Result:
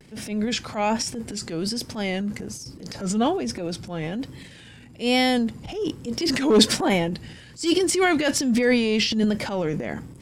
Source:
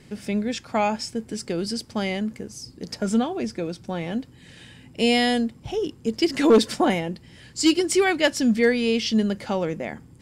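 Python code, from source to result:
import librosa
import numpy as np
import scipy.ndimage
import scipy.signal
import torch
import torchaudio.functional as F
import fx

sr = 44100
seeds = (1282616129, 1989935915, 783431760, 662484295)

y = fx.vibrato(x, sr, rate_hz=1.2, depth_cents=91.0)
y = fx.transient(y, sr, attack_db=-9, sustain_db=9)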